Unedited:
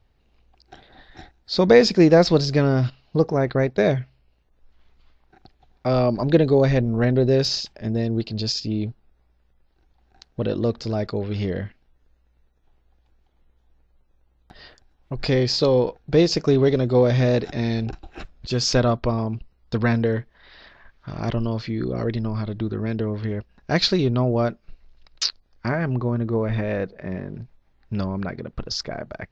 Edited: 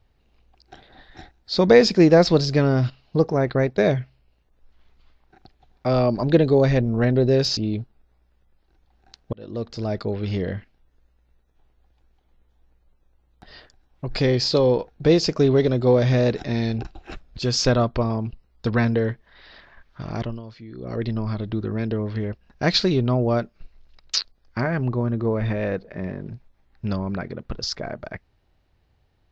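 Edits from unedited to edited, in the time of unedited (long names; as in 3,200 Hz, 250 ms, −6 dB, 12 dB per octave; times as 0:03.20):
0:07.57–0:08.65: remove
0:10.41–0:11.26: fade in equal-power
0:21.17–0:22.16: duck −13.5 dB, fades 0.33 s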